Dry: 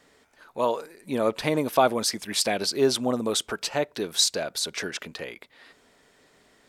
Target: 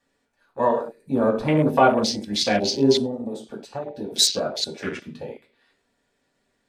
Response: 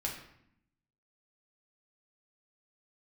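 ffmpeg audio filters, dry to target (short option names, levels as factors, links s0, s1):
-filter_complex "[1:a]atrim=start_sample=2205,asetrate=79380,aresample=44100[s0];[0:a][s0]afir=irnorm=-1:irlink=0,asettb=1/sr,asplit=3[s1][s2][s3];[s1]atrim=end=3.064[s4];[s2]atrim=start=3.06:end=4.16,asetpts=PTS-STARTPTS,afade=t=in:d=0.004:c=qsin,afade=t=out:st=1.096:d=0.004:c=qsin,acompressor=threshold=0.0178:ratio=4[s5];[s3]atrim=start=4.156[s6];[s4][s5]acrossfade=d=0.004:c1=hsin:c2=qsin[s7];[s7][s6]acrossfade=d=0.004:c1=qsin:c2=hsin,afwtdn=0.02,volume=2.24"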